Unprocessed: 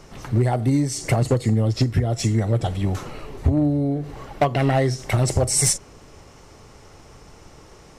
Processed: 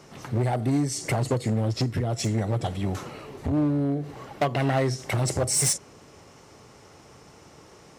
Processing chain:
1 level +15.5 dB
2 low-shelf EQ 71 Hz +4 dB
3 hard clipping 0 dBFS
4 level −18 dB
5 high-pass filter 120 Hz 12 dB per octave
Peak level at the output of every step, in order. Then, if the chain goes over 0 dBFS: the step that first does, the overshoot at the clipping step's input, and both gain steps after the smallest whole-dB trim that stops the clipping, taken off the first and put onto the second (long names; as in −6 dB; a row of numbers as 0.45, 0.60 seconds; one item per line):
+4.0, +7.0, 0.0, −18.0, −12.0 dBFS
step 1, 7.0 dB
step 1 +8.5 dB, step 4 −11 dB